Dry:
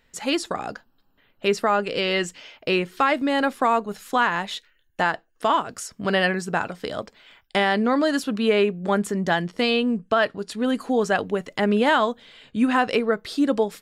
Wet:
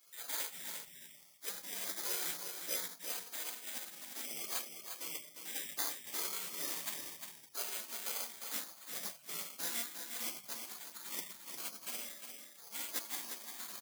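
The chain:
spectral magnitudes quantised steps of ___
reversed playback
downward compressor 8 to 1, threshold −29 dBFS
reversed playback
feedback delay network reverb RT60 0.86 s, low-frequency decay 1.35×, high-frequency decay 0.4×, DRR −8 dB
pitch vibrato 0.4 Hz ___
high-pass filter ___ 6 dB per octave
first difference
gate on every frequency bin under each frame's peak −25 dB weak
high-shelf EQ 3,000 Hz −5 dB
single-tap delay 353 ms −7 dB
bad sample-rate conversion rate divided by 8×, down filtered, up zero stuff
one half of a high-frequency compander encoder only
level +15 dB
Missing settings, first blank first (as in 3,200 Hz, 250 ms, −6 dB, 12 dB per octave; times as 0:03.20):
30 dB, 17 cents, 1,000 Hz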